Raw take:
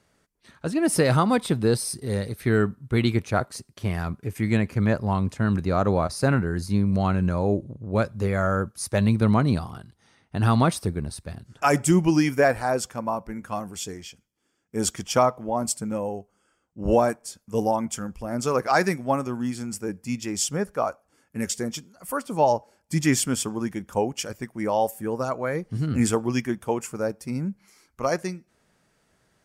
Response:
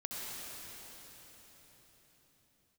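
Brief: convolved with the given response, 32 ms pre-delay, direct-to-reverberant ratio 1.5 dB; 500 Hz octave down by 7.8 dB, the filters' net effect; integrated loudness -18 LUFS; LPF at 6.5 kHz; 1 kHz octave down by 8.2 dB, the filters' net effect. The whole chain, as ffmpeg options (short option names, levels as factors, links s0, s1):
-filter_complex "[0:a]lowpass=6500,equalizer=f=500:t=o:g=-7.5,equalizer=f=1000:t=o:g=-8.5,asplit=2[s0][s1];[1:a]atrim=start_sample=2205,adelay=32[s2];[s1][s2]afir=irnorm=-1:irlink=0,volume=0.668[s3];[s0][s3]amix=inputs=2:normalize=0,volume=2.37"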